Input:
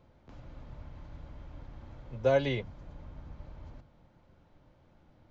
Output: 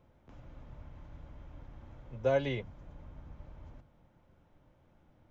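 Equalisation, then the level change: peaking EQ 4.4 kHz -7 dB 0.38 oct; -3.0 dB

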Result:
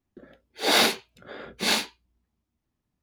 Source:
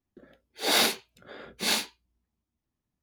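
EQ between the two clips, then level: treble shelf 6 kHz -7 dB; +4.5 dB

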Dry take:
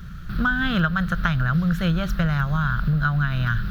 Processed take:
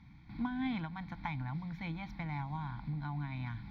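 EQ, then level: vowel filter u; peaking EQ 180 Hz -9 dB 0.35 oct; static phaser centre 1.9 kHz, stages 8; +8.0 dB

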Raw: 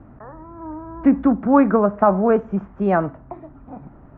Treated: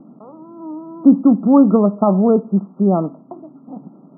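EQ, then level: brick-wall FIR band-pass 160–1400 Hz; tilt EQ -4.5 dB/octave; -3.5 dB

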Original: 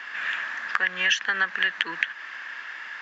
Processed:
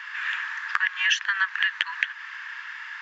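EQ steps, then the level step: brick-wall FIR high-pass 850 Hz; 0.0 dB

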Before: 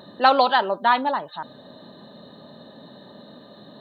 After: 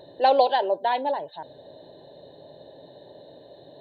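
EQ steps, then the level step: treble shelf 2.3 kHz -10 dB; static phaser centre 520 Hz, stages 4; +2.5 dB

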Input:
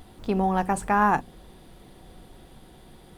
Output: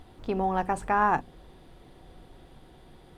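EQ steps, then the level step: peaking EQ 200 Hz -7.5 dB 0.22 oct; treble shelf 6.5 kHz -11 dB; -2.0 dB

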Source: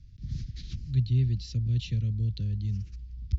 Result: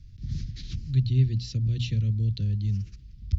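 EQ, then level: hum notches 60/120/180/240 Hz; +4.0 dB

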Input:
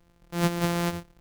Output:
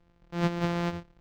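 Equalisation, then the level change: distance through air 190 m; treble shelf 8.8 kHz +11.5 dB; -2.0 dB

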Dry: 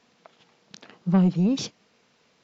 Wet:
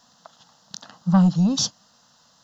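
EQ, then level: treble shelf 2.4 kHz +9 dB; static phaser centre 960 Hz, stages 4; +6.0 dB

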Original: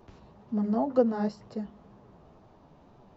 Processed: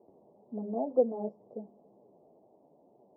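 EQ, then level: high-pass 370 Hz 12 dB/octave; inverse Chebyshev low-pass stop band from 1.4 kHz, stop band 40 dB; 0.0 dB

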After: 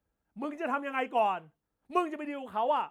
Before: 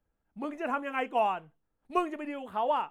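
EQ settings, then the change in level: high-pass 43 Hz; 0.0 dB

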